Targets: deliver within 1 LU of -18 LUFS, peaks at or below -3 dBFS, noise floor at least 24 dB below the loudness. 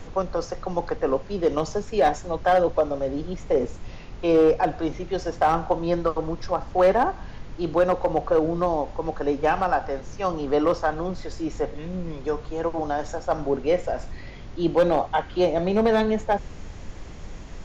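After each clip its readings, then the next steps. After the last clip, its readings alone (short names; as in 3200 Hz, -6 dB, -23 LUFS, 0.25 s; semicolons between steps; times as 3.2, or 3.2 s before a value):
clipped 0.5%; flat tops at -12.0 dBFS; noise floor -40 dBFS; noise floor target -49 dBFS; loudness -24.5 LUFS; peak -12.0 dBFS; loudness target -18.0 LUFS
-> clip repair -12 dBFS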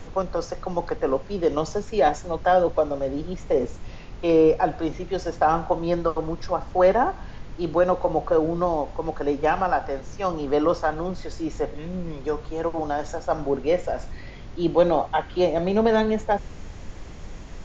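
clipped 0.0%; noise floor -40 dBFS; noise floor target -48 dBFS
-> noise print and reduce 8 dB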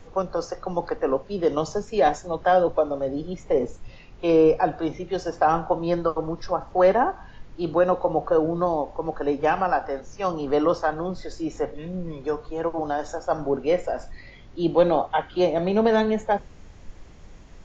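noise floor -46 dBFS; noise floor target -48 dBFS
-> noise print and reduce 6 dB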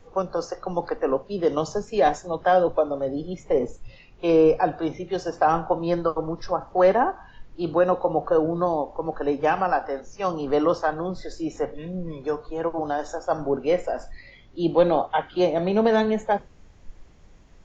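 noise floor -50 dBFS; loudness -24.0 LUFS; peak -6.5 dBFS; loudness target -18.0 LUFS
-> gain +6 dB; limiter -3 dBFS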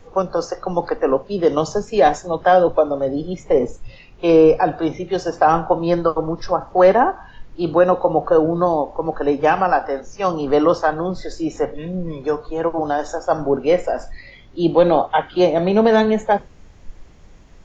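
loudness -18.5 LUFS; peak -3.0 dBFS; noise floor -44 dBFS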